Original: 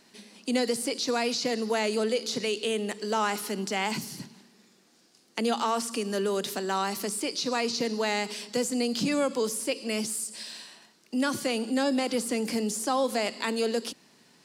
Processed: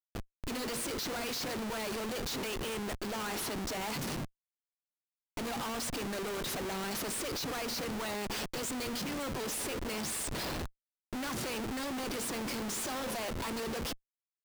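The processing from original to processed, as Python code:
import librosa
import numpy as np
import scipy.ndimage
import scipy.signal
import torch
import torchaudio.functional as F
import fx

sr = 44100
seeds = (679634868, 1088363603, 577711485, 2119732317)

y = fx.low_shelf(x, sr, hz=450.0, db=6.5)
y = fx.hum_notches(y, sr, base_hz=60, count=9)
y = fx.hpss(y, sr, part='harmonic', gain_db=-15)
y = fx.peak_eq(y, sr, hz=1900.0, db=-3.0, octaves=0.44)
y = fx.schmitt(y, sr, flips_db=-42.5)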